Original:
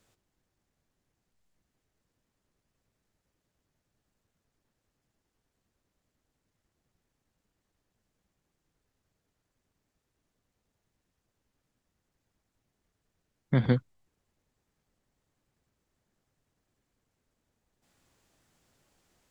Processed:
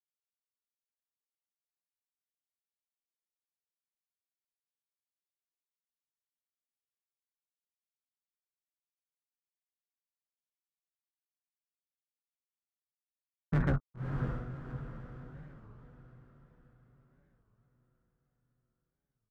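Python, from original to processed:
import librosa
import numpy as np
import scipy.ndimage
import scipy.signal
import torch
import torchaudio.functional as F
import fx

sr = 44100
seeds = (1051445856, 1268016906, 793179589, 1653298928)

p1 = fx.octave_divider(x, sr, octaves=2, level_db=1.0)
p2 = fx.peak_eq(p1, sr, hz=140.0, db=10.0, octaves=0.34)
p3 = fx.over_compress(p2, sr, threshold_db=-21.0, ratio=-1.0)
p4 = p2 + (p3 * librosa.db_to_amplitude(-1.0))
p5 = np.sign(p4) * np.maximum(np.abs(p4) - 10.0 ** (-34.5 / 20.0), 0.0)
p6 = fx.ladder_lowpass(p5, sr, hz=1400.0, resonance_pct=75)
p7 = np.clip(10.0 ** (26.0 / 20.0) * p6, -1.0, 1.0) / 10.0 ** (26.0 / 20.0)
p8 = p7 + fx.echo_diffused(p7, sr, ms=578, feedback_pct=47, wet_db=-5, dry=0)
p9 = fx.record_warp(p8, sr, rpm=33.33, depth_cents=250.0)
y = p9 * librosa.db_to_amplitude(2.0)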